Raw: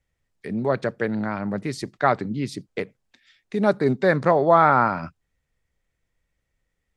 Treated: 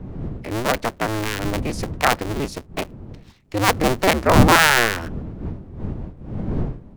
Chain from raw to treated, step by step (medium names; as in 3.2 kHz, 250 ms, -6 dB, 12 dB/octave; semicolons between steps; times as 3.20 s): cycle switcher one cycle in 2, inverted; wind noise 160 Hz -28 dBFS; formant shift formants +2 st; trim +1.5 dB